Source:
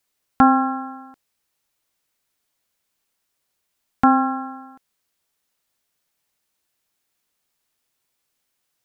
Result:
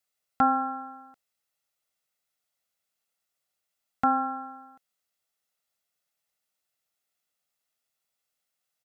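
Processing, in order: bass shelf 100 Hz -11 dB; comb 1.5 ms, depth 42%; trim -8.5 dB

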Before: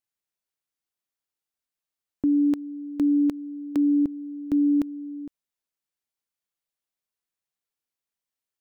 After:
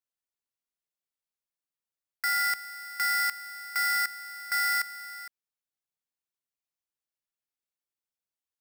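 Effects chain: bit-reversed sample order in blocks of 16 samples; polarity switched at an audio rate 1.7 kHz; trim -6.5 dB

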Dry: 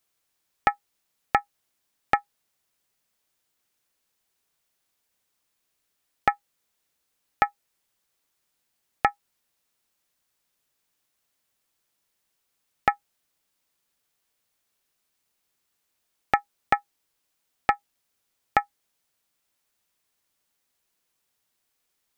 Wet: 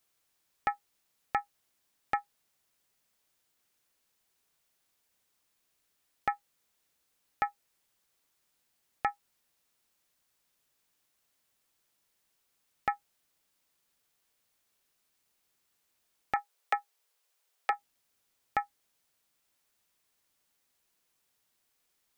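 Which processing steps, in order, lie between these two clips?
16.36–17.73 s: steep high-pass 380 Hz 96 dB/octave; peak limiter -14.5 dBFS, peak gain reduction 11.5 dB

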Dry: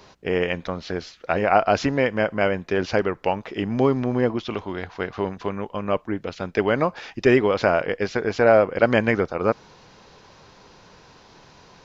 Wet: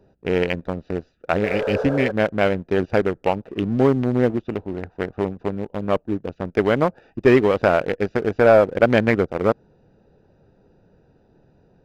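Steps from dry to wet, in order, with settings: local Wiener filter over 41 samples; spectral replace 1.47–2.08 s, 420–1700 Hz before; waveshaping leveller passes 1

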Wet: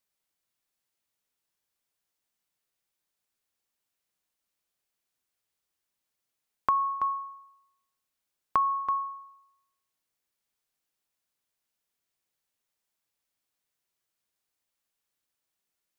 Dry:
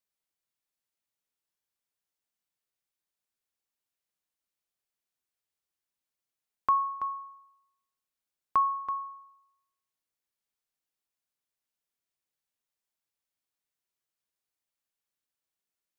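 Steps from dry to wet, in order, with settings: compression, threshold -27 dBFS, peak gain reduction 6.5 dB; trim +5 dB

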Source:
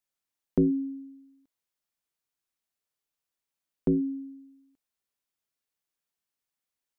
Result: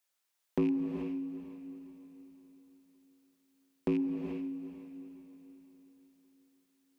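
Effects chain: rattle on loud lows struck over -27 dBFS, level -37 dBFS; high-pass 570 Hz 6 dB/octave; in parallel at -0.5 dB: compression, threshold -41 dBFS, peak gain reduction 14.5 dB; on the sum: saturation -22 dBFS, distortion -19 dB; on a send: echo that smears into a reverb 458 ms, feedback 43%, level -12 dB; on the sum: gated-style reverb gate 460 ms rising, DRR 4.5 dB; trim +1 dB

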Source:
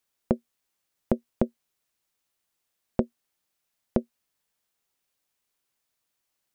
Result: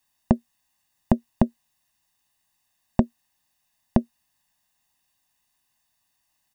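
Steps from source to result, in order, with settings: comb 1.1 ms, depth 87%; trim +4 dB

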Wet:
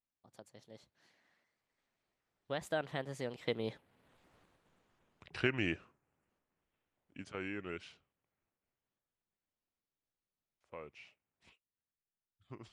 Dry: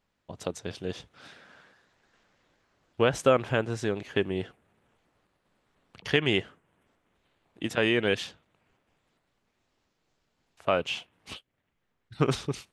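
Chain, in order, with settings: fade out at the end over 0.51 s; Doppler pass-by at 4.37 s, 57 m/s, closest 16 m; trim +2.5 dB

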